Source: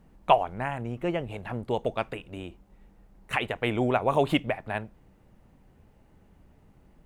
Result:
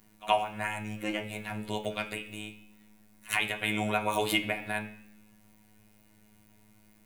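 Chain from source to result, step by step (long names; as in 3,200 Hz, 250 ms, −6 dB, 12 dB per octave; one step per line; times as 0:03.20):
first-order pre-emphasis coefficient 0.9
in parallel at +2 dB: brickwall limiter −31.5 dBFS, peak gain reduction 11.5 dB
on the sum: phases set to zero 106 Hz
echo ahead of the sound 72 ms −21.5 dB
on a send at −2 dB: convolution reverb RT60 0.70 s, pre-delay 3 ms
on the sum: level +7 dB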